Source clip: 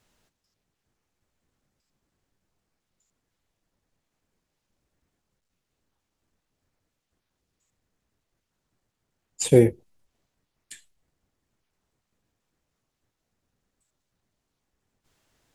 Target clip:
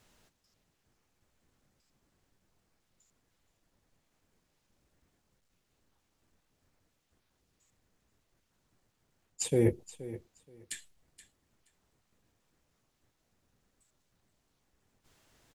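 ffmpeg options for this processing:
-af "areverse,acompressor=threshold=0.0562:ratio=16,areverse,aecho=1:1:475|950:0.158|0.0285,volume=1.41"

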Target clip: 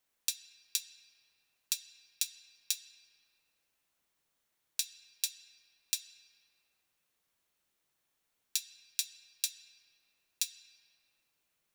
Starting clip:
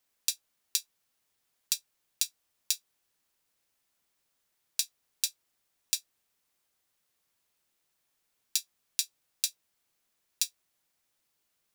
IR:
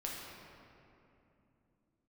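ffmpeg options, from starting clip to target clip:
-filter_complex "[0:a]bandreject=f=4900:w=18,asplit=2[s0][s1];[1:a]atrim=start_sample=2205,lowpass=5900[s2];[s1][s2]afir=irnorm=-1:irlink=0,volume=0.376[s3];[s0][s3]amix=inputs=2:normalize=0,volume=0.668"

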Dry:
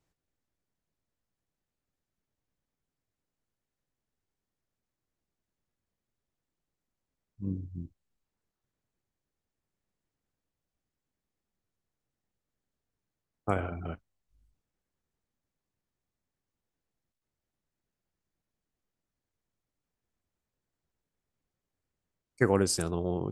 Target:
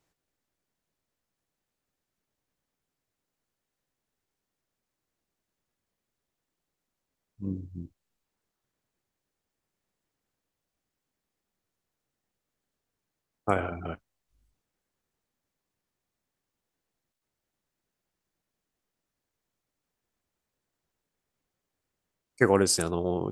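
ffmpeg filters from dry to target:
-af "lowshelf=f=190:g=-8,volume=1.78"

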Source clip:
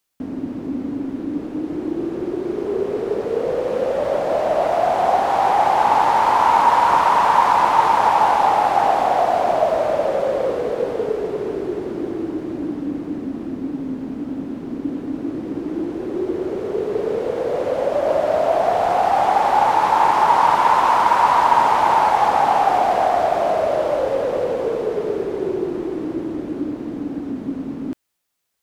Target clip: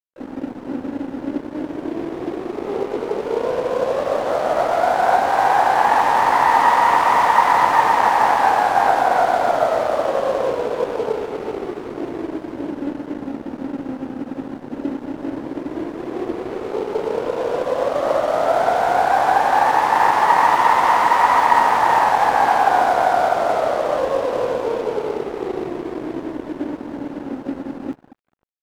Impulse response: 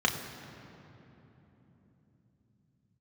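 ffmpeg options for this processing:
-filter_complex "[0:a]asplit=2[s0][s1];[1:a]atrim=start_sample=2205,highshelf=f=2000:g=-9[s2];[s1][s2]afir=irnorm=-1:irlink=0,volume=0.158[s3];[s0][s3]amix=inputs=2:normalize=0,aeval=exprs='sgn(val(0))*max(abs(val(0))-0.0316,0)':c=same,asplit=4[s4][s5][s6][s7];[s5]asetrate=55563,aresample=44100,atempo=0.793701,volume=0.158[s8];[s6]asetrate=58866,aresample=44100,atempo=0.749154,volume=0.158[s9];[s7]asetrate=88200,aresample=44100,atempo=0.5,volume=0.251[s10];[s4][s8][s9][s10]amix=inputs=4:normalize=0,volume=0.841"

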